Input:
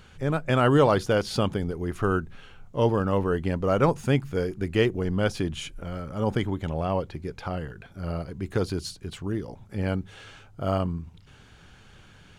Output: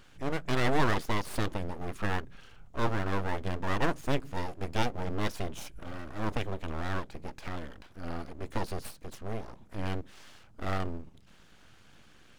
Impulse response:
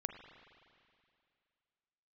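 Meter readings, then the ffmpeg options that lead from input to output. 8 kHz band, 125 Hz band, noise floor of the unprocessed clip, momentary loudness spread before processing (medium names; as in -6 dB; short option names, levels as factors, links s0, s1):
-3.5 dB, -8.5 dB, -52 dBFS, 13 LU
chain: -af "aeval=exprs='abs(val(0))':c=same,volume=0.631"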